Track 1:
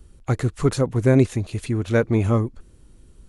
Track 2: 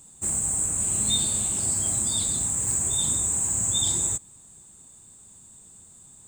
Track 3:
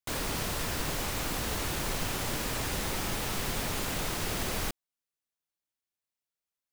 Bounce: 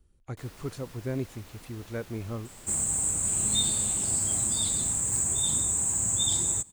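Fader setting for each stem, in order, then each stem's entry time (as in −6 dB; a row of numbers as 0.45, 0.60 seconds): −16.0, −2.0, −18.0 decibels; 0.00, 2.45, 0.30 seconds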